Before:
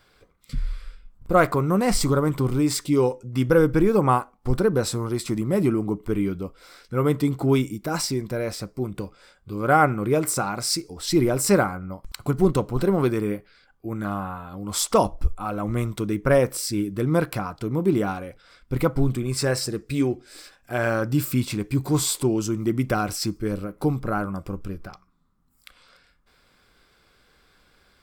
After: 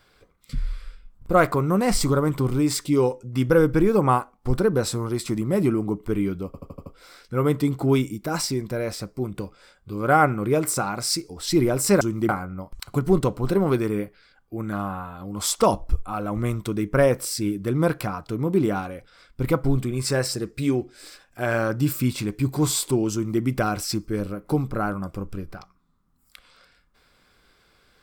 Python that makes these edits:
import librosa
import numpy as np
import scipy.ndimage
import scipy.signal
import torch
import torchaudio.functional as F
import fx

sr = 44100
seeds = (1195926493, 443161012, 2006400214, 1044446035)

y = fx.edit(x, sr, fx.stutter(start_s=6.46, slice_s=0.08, count=6),
    fx.duplicate(start_s=22.45, length_s=0.28, to_s=11.61), tone=tone)